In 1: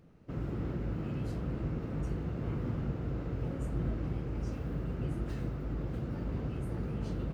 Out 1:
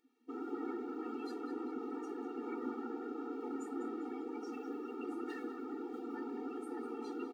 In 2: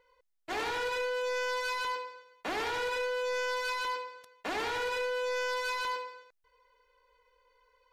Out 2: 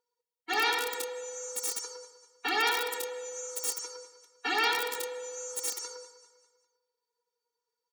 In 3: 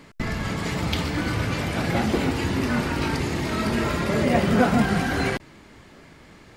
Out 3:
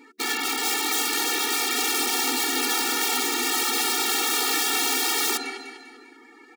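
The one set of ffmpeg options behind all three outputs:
-filter_complex "[0:a]afftdn=noise_reduction=17:noise_floor=-49,asplit=2[link_01][link_02];[link_02]aecho=0:1:199|398|597|796:0.224|0.094|0.0395|0.0166[link_03];[link_01][link_03]amix=inputs=2:normalize=0,asoftclip=type=tanh:threshold=-9.5dB,highpass=frequency=57:width=0.5412,highpass=frequency=57:width=1.3066,tiltshelf=frequency=870:gain=-9,bandreject=frequency=74.47:width_type=h:width=4,bandreject=frequency=148.94:width_type=h:width=4,bandreject=frequency=223.41:width_type=h:width=4,bandreject=frequency=297.88:width_type=h:width=4,bandreject=frequency=372.35:width_type=h:width=4,bandreject=frequency=446.82:width_type=h:width=4,bandreject=frequency=521.29:width_type=h:width=4,bandreject=frequency=595.76:width_type=h:width=4,asplit=2[link_04][link_05];[link_05]adelay=271,lowpass=frequency=870:poles=1,volume=-21.5dB,asplit=2[link_06][link_07];[link_07]adelay=271,lowpass=frequency=870:poles=1,volume=0.35,asplit=2[link_08][link_09];[link_09]adelay=271,lowpass=frequency=870:poles=1,volume=0.35[link_10];[link_06][link_08][link_10]amix=inputs=3:normalize=0[link_11];[link_04][link_11]amix=inputs=2:normalize=0,acontrast=43,equalizer=frequency=180:width=0.87:gain=5,aeval=exprs='(mod(5.96*val(0)+1,2)-1)/5.96':channel_layout=same,afftfilt=real='re*eq(mod(floor(b*sr/1024/240),2),1)':imag='im*eq(mod(floor(b*sr/1024/240),2),1)':win_size=1024:overlap=0.75"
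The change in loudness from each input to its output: −5.5, +1.5, +2.0 LU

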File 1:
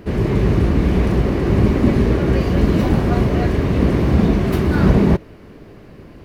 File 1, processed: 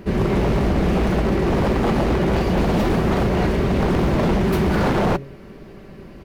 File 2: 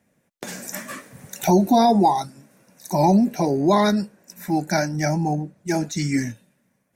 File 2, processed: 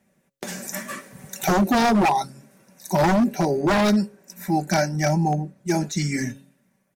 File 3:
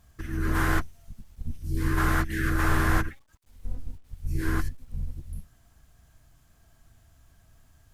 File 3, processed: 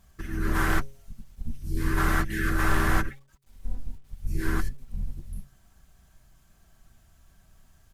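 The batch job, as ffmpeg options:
-af "aecho=1:1:5.2:0.4,bandreject=frequency=136.8:width_type=h:width=4,bandreject=frequency=273.6:width_type=h:width=4,bandreject=frequency=410.4:width_type=h:width=4,bandreject=frequency=547.2:width_type=h:width=4,aeval=exprs='0.224*(abs(mod(val(0)/0.224+3,4)-2)-1)':channel_layout=same"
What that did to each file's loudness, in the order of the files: −3.0, −1.5, −0.5 LU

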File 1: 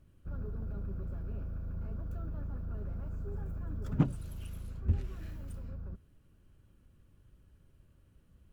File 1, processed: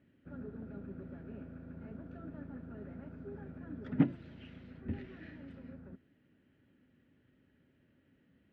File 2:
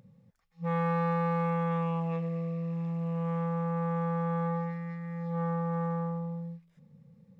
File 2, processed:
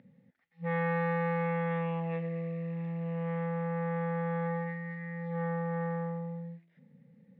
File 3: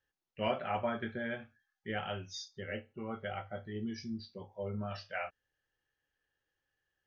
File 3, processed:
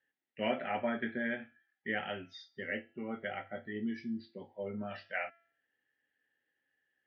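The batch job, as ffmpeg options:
-af "highpass=180,equalizer=frequency=260:width_type=q:width=4:gain=9,equalizer=frequency=1100:width_type=q:width=4:gain=-9,equalizer=frequency=1900:width_type=q:width=4:gain=10,lowpass=frequency=3600:width=0.5412,lowpass=frequency=3600:width=1.3066,bandreject=frequency=337.9:width_type=h:width=4,bandreject=frequency=675.8:width_type=h:width=4,bandreject=frequency=1013.7:width_type=h:width=4,bandreject=frequency=1351.6:width_type=h:width=4,bandreject=frequency=1689.5:width_type=h:width=4,bandreject=frequency=2027.4:width_type=h:width=4,bandreject=frequency=2365.3:width_type=h:width=4,bandreject=frequency=2703.2:width_type=h:width=4,bandreject=frequency=3041.1:width_type=h:width=4,bandreject=frequency=3379:width_type=h:width=4,bandreject=frequency=3716.9:width_type=h:width=4,bandreject=frequency=4054.8:width_type=h:width=4,bandreject=frequency=4392.7:width_type=h:width=4,bandreject=frequency=4730.6:width_type=h:width=4,bandreject=frequency=5068.5:width_type=h:width=4,bandreject=frequency=5406.4:width_type=h:width=4,bandreject=frequency=5744.3:width_type=h:width=4,bandreject=frequency=6082.2:width_type=h:width=4,bandreject=frequency=6420.1:width_type=h:width=4,bandreject=frequency=6758:width_type=h:width=4,bandreject=frequency=7095.9:width_type=h:width=4,bandreject=frequency=7433.8:width_type=h:width=4,bandreject=frequency=7771.7:width_type=h:width=4,bandreject=frequency=8109.6:width_type=h:width=4,bandreject=frequency=8447.5:width_type=h:width=4,bandreject=frequency=8785.4:width_type=h:width=4,bandreject=frequency=9123.3:width_type=h:width=4,bandreject=frequency=9461.2:width_type=h:width=4,bandreject=frequency=9799.1:width_type=h:width=4,bandreject=frequency=10137:width_type=h:width=4"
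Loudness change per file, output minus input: −3.5, −2.0, +1.0 LU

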